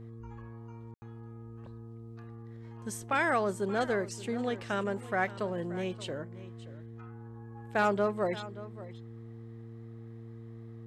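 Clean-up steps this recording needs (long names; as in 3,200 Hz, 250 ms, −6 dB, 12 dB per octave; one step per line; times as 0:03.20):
clipped peaks rebuilt −18.5 dBFS
hum removal 114.3 Hz, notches 4
ambience match 0:00.94–0:01.02
echo removal 577 ms −16.5 dB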